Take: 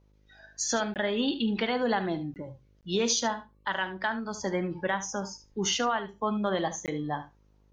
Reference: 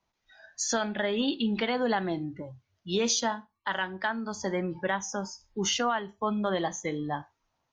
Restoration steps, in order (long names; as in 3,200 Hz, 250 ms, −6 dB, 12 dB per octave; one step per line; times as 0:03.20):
hum removal 51.3 Hz, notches 11
repair the gap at 0:00.94/0:02.34/0:02.81/0:06.86, 18 ms
echo removal 73 ms −13.5 dB